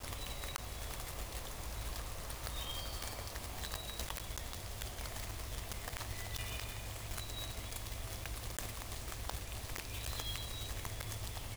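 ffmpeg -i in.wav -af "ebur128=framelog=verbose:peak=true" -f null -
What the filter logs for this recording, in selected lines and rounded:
Integrated loudness:
  I:         -42.8 LUFS
  Threshold: -52.8 LUFS
Loudness range:
  LRA:         0.7 LU
  Threshold: -62.8 LUFS
  LRA low:   -43.1 LUFS
  LRA high:  -42.5 LUFS
True peak:
  Peak:      -16.5 dBFS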